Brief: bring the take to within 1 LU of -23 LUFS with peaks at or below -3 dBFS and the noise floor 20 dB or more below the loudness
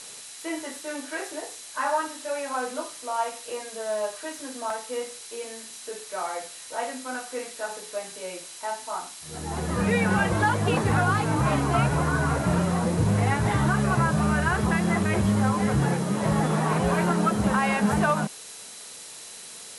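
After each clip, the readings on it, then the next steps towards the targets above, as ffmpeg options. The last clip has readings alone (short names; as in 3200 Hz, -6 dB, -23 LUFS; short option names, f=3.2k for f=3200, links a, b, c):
steady tone 4000 Hz; tone level -52 dBFS; noise floor -42 dBFS; noise floor target -46 dBFS; loudness -26.0 LUFS; peak -12.0 dBFS; loudness target -23.0 LUFS
-> -af "bandreject=f=4k:w=30"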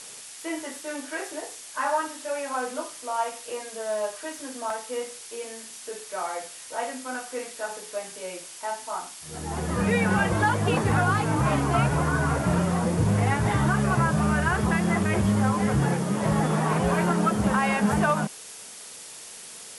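steady tone none; noise floor -43 dBFS; noise floor target -46 dBFS
-> -af "afftdn=nr=6:nf=-43"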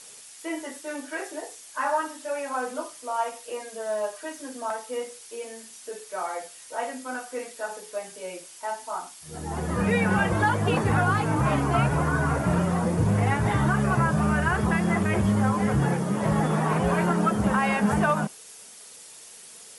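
noise floor -47 dBFS; loudness -26.0 LUFS; peak -12.0 dBFS; loudness target -23.0 LUFS
-> -af "volume=3dB"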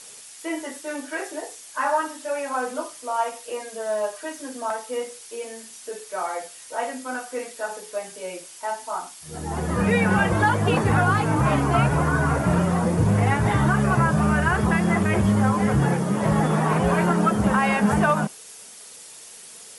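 loudness -23.0 LUFS; peak -9.0 dBFS; noise floor -44 dBFS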